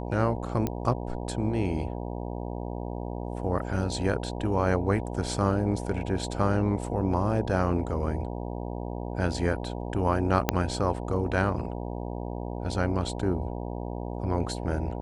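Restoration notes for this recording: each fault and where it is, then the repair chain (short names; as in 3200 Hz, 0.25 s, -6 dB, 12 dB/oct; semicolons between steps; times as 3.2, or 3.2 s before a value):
buzz 60 Hz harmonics 16 -34 dBFS
0.67 pop -15 dBFS
10.49 pop -6 dBFS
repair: de-click; de-hum 60 Hz, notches 16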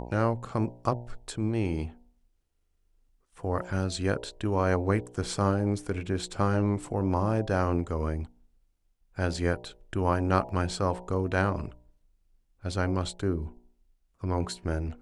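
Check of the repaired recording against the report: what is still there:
0.67 pop
10.49 pop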